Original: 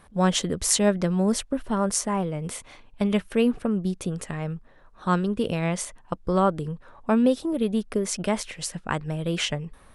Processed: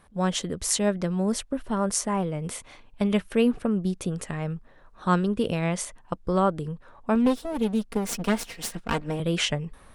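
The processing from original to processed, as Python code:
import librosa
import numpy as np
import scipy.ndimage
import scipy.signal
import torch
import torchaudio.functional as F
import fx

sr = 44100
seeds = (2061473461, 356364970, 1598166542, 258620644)

y = fx.lower_of_two(x, sr, delay_ms=4.3, at=(7.15, 9.2))
y = fx.rider(y, sr, range_db=3, speed_s=2.0)
y = F.gain(torch.from_numpy(y), -1.5).numpy()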